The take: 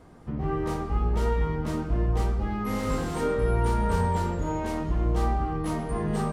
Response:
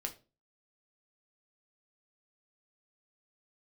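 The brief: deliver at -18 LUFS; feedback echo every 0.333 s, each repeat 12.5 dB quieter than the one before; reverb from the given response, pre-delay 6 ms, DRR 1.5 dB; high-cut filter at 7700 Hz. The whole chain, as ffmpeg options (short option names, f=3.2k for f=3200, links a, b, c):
-filter_complex "[0:a]lowpass=7.7k,aecho=1:1:333|666|999:0.237|0.0569|0.0137,asplit=2[a][b];[1:a]atrim=start_sample=2205,adelay=6[c];[b][c]afir=irnorm=-1:irlink=0,volume=-1dB[d];[a][d]amix=inputs=2:normalize=0,volume=9dB"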